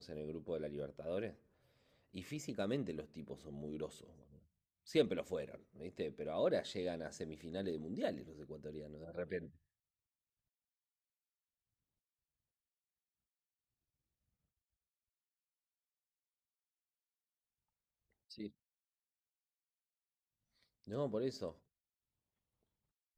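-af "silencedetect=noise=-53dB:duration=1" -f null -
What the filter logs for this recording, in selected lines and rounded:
silence_start: 9.49
silence_end: 18.31 | silence_duration: 8.82
silence_start: 18.49
silence_end: 20.84 | silence_duration: 2.35
silence_start: 21.52
silence_end: 23.17 | silence_duration: 1.65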